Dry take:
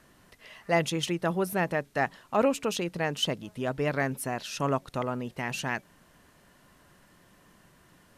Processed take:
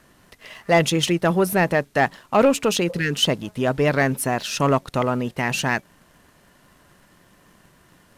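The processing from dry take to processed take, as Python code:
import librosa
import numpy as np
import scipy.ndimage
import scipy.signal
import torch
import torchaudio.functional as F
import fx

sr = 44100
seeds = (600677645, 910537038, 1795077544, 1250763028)

y = fx.leveller(x, sr, passes=1)
y = fx.spec_repair(y, sr, seeds[0], start_s=2.92, length_s=0.22, low_hz=470.0, high_hz=1300.0, source='both')
y = F.gain(torch.from_numpy(y), 6.0).numpy()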